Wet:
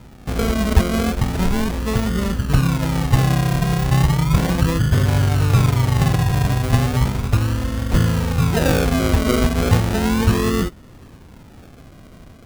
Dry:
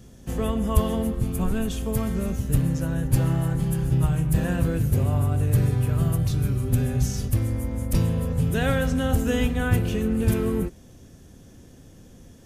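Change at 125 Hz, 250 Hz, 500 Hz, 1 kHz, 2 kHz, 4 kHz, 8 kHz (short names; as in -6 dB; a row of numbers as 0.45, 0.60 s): +5.5, +5.0, +5.0, +10.5, +8.0, +11.0, +6.0 dB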